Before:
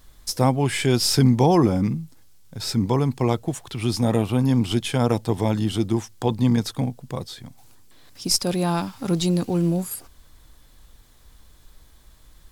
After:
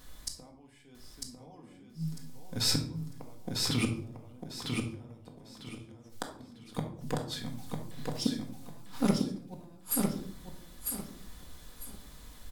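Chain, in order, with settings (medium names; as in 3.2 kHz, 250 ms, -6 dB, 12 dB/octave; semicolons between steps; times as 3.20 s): inverted gate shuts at -16 dBFS, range -38 dB; bass shelf 65 Hz -9 dB; feedback delay 949 ms, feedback 25%, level -3.5 dB; simulated room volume 740 m³, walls furnished, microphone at 1.9 m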